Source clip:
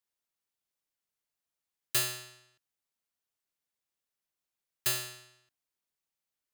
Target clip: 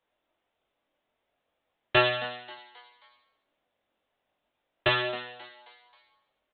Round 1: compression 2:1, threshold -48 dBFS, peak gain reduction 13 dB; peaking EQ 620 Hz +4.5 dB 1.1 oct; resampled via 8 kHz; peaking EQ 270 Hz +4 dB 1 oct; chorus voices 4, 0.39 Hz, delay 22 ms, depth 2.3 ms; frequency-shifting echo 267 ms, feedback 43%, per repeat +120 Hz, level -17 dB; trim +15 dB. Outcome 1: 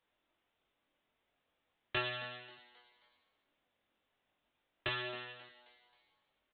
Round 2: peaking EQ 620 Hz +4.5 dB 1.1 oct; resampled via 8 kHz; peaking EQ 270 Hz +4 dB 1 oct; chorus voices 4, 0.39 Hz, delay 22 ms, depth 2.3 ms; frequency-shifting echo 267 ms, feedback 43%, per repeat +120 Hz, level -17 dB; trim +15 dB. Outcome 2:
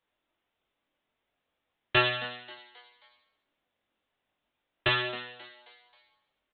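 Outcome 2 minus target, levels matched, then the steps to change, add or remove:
500 Hz band -3.5 dB
change: first peaking EQ 620 Hz +11 dB 1.1 oct

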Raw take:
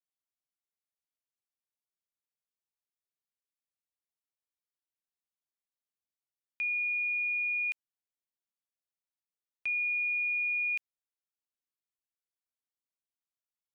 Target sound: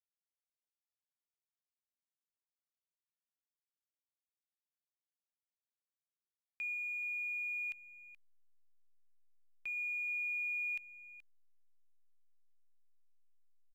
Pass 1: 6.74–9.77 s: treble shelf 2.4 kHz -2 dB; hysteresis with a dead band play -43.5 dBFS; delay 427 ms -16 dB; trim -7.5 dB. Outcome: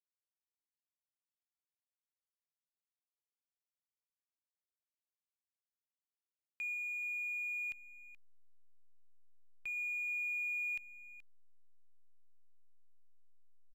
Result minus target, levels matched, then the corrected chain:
hysteresis with a dead band: distortion +8 dB
6.74–9.77 s: treble shelf 2.4 kHz -2 dB; hysteresis with a dead band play -51.5 dBFS; delay 427 ms -16 dB; trim -7.5 dB

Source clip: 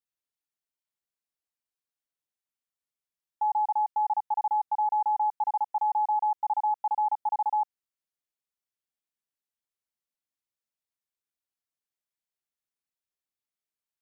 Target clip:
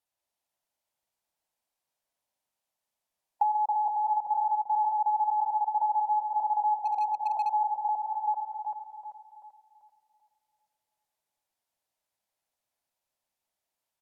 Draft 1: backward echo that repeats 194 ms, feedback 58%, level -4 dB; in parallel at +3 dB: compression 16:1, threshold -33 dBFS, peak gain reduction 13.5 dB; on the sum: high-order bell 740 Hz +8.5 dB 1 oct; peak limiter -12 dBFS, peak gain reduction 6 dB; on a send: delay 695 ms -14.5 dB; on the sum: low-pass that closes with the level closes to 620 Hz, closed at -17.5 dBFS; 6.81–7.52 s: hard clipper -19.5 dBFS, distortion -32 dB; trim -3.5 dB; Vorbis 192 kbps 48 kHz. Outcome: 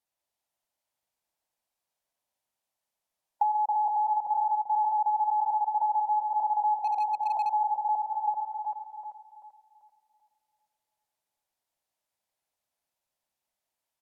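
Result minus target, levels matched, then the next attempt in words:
compression: peak gain reduction -10 dB
backward echo that repeats 194 ms, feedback 58%, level -4 dB; in parallel at +3 dB: compression 16:1, threshold -43.5 dBFS, peak gain reduction 23.5 dB; on the sum: high-order bell 740 Hz +8.5 dB 1 oct; peak limiter -12 dBFS, peak gain reduction 4.5 dB; on a send: delay 695 ms -14.5 dB; on the sum: low-pass that closes with the level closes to 620 Hz, closed at -17.5 dBFS; 6.81–7.52 s: hard clipper -19.5 dBFS, distortion -35 dB; trim -3.5 dB; Vorbis 192 kbps 48 kHz

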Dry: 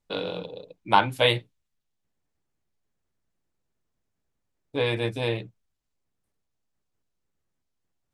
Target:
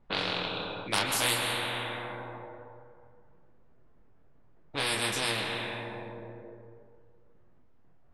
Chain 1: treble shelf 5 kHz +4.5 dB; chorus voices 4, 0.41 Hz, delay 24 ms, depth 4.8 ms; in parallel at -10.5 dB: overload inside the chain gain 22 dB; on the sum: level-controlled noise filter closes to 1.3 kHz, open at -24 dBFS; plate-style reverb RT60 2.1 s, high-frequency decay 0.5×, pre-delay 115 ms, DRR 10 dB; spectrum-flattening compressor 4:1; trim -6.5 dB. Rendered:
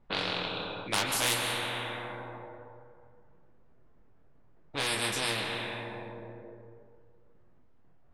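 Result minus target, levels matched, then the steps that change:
overload inside the chain: distortion +17 dB
change: overload inside the chain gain 12 dB

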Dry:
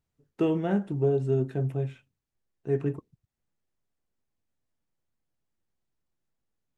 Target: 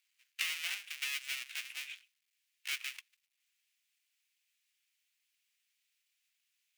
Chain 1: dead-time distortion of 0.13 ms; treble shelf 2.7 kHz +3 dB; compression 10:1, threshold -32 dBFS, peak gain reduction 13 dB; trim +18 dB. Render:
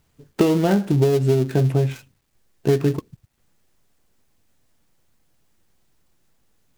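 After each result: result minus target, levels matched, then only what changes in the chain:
2 kHz band -16.5 dB; dead-time distortion: distortion -10 dB
add after compression: ladder high-pass 2.1 kHz, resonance 50%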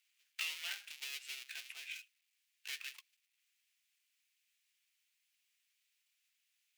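dead-time distortion: distortion -10 dB
change: dead-time distortion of 0.29 ms

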